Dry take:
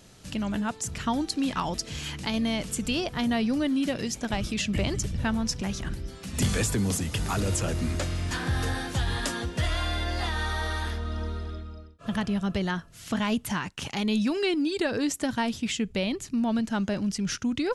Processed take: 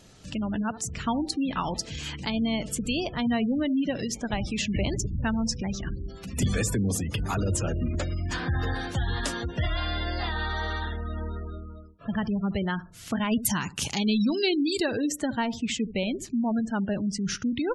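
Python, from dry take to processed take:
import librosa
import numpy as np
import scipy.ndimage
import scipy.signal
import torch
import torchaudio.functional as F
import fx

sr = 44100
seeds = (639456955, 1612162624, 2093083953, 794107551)

y = fx.bass_treble(x, sr, bass_db=3, treble_db=12, at=(13.31, 14.86))
y = fx.echo_filtered(y, sr, ms=71, feedback_pct=26, hz=1100.0, wet_db=-14.0)
y = fx.spec_gate(y, sr, threshold_db=-25, keep='strong')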